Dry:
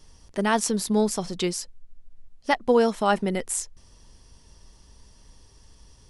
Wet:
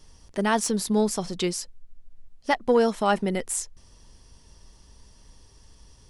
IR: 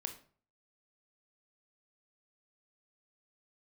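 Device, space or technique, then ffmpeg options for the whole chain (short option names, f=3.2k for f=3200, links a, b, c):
saturation between pre-emphasis and de-emphasis: -af "highshelf=f=4.7k:g=7.5,asoftclip=type=tanh:threshold=-8dB,highshelf=f=4.7k:g=-7.5"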